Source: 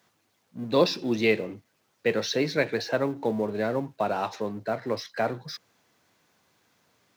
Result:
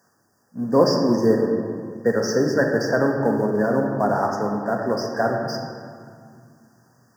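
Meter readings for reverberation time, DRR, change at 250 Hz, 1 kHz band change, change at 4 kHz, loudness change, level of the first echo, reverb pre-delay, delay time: 2.2 s, 1.0 dB, +8.5 dB, +7.0 dB, 0.0 dB, +6.0 dB, no echo, 4 ms, no echo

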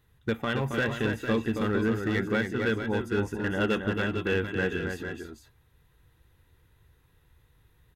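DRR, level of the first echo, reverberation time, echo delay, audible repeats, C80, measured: no reverb, -6.0 dB, no reverb, 272 ms, 2, no reverb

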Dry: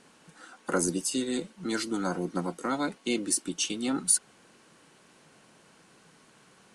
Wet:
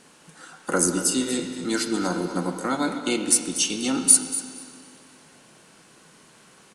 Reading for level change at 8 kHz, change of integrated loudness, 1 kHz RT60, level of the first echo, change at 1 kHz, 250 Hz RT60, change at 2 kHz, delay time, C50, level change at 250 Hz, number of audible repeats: +9.0 dB, +7.0 dB, 2.3 s, -12.5 dB, +5.0 dB, 2.3 s, +5.5 dB, 238 ms, 5.5 dB, +5.0 dB, 1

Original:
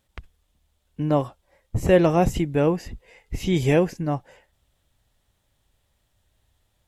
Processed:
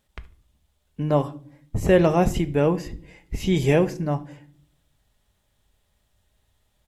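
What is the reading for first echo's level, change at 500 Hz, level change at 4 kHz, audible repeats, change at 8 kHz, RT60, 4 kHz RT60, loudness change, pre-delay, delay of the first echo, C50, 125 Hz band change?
-22.0 dB, 0.0 dB, +0.5 dB, 2, 0.0 dB, 0.50 s, 0.35 s, 0.0 dB, 5 ms, 74 ms, 18.0 dB, +0.5 dB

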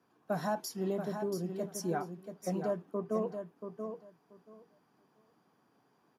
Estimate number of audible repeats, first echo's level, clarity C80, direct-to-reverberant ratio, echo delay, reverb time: 2, -7.5 dB, no reverb, no reverb, 682 ms, no reverb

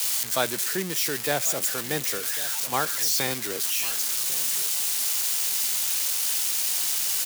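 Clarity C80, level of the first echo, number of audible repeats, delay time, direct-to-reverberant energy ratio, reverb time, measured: no reverb, -17.0 dB, 1, 1098 ms, no reverb, no reverb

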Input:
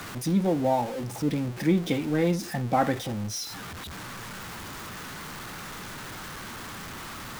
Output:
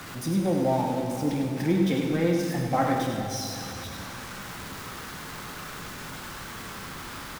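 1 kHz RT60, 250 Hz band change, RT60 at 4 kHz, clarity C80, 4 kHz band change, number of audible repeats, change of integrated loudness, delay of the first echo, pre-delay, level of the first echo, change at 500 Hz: 2.8 s, +1.0 dB, 2.5 s, 2.0 dB, +0.5 dB, 1, +0.5 dB, 99 ms, 3 ms, -6.5 dB, +1.0 dB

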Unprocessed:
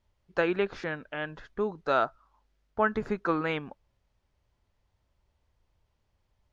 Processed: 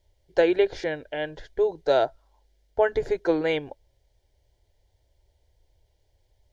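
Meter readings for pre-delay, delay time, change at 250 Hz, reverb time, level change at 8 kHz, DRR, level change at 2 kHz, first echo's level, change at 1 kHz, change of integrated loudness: no reverb, no echo, +3.0 dB, no reverb, no reading, no reverb, 0.0 dB, no echo, -0.5 dB, +5.0 dB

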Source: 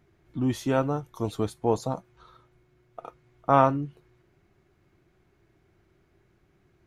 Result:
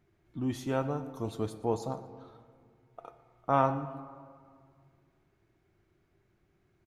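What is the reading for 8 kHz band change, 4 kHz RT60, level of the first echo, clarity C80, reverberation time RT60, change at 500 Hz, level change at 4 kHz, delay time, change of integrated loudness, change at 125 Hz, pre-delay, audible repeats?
no reading, 1.0 s, -19.5 dB, 13.0 dB, 2.1 s, -6.0 dB, -6.5 dB, 118 ms, -6.0 dB, -6.0 dB, 5 ms, 1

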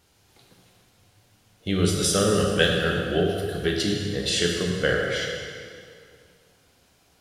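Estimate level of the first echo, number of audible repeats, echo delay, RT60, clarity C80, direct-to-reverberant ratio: no echo, no echo, no echo, 2.2 s, 3.0 dB, -0.5 dB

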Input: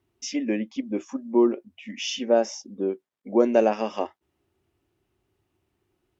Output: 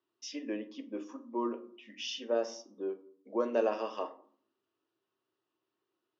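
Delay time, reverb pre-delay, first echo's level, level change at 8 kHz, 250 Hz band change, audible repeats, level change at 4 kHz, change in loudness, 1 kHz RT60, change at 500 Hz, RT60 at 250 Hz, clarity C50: no echo, 6 ms, no echo, no reading, -13.5 dB, no echo, -8.0 dB, -11.0 dB, 0.55 s, -10.5 dB, 0.80 s, 15.0 dB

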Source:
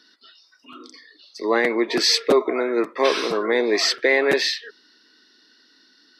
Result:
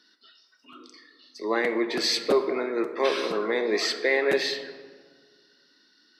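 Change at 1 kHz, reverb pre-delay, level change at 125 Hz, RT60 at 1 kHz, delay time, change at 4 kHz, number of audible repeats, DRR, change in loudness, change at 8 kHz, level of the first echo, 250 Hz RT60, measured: -5.5 dB, 4 ms, no reading, 1.5 s, no echo, -6.5 dB, no echo, 8.0 dB, -5.5 dB, -7.5 dB, no echo, 2.0 s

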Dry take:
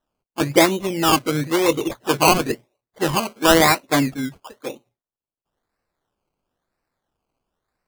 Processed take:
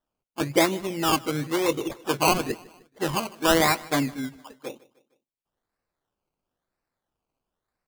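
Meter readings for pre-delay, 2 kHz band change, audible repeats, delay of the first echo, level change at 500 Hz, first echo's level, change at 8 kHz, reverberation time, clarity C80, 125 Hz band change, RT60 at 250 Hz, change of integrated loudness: no reverb, -6.0 dB, 3, 153 ms, -6.0 dB, -22.0 dB, -6.0 dB, no reverb, no reverb, -6.0 dB, no reverb, -6.0 dB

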